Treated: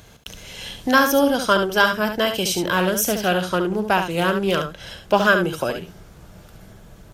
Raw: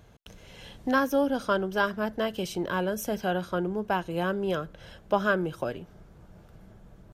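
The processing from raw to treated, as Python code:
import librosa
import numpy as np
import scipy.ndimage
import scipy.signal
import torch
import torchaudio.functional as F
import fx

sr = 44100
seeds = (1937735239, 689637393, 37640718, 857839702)

y = fx.high_shelf(x, sr, hz=2000.0, db=11.5)
y = y + 10.0 ** (-7.5 / 20.0) * np.pad(y, (int(71 * sr / 1000.0), 0))[:len(y)]
y = fx.doppler_dist(y, sr, depth_ms=0.1, at=(2.77, 5.27))
y = F.gain(torch.from_numpy(y), 6.0).numpy()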